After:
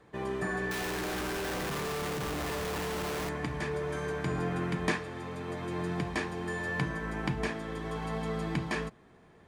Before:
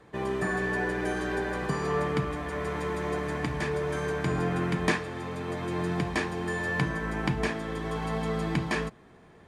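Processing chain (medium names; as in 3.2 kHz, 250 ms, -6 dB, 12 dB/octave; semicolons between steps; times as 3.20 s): 0.71–3.29 s: Schmitt trigger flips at -44 dBFS; trim -4 dB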